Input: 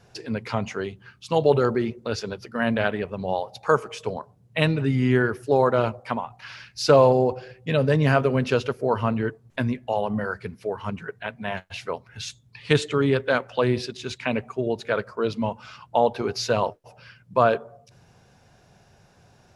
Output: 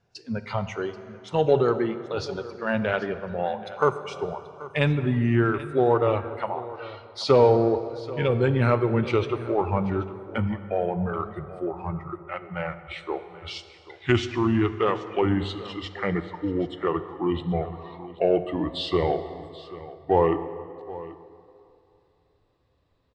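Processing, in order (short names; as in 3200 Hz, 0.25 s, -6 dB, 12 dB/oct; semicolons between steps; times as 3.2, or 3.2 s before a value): speed glide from 99% -> 70%; spectral noise reduction 14 dB; in parallel at -10 dB: soft clip -21 dBFS, distortion -7 dB; on the sum: air absorption 75 m; on a send: echo 0.783 s -17.5 dB; on the sum: plate-style reverb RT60 2.8 s, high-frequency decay 0.6×, DRR 11 dB; gain -2.5 dB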